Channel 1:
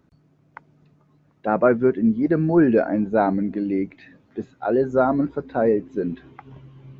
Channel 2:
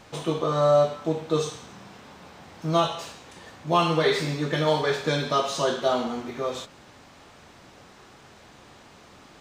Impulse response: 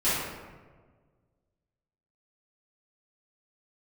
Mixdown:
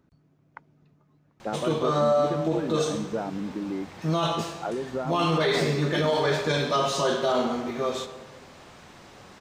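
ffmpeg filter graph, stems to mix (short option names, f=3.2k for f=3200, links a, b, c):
-filter_complex "[0:a]acompressor=threshold=-24dB:ratio=6,volume=-4dB[a];[1:a]adelay=1400,volume=0.5dB,asplit=2[b][c];[c]volume=-20.5dB[d];[2:a]atrim=start_sample=2205[e];[d][e]afir=irnorm=-1:irlink=0[f];[a][b][f]amix=inputs=3:normalize=0,alimiter=limit=-15dB:level=0:latency=1:release=11"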